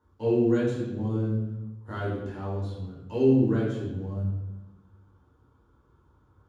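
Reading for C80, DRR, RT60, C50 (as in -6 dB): 4.0 dB, -6.5 dB, 1.1 s, 1.0 dB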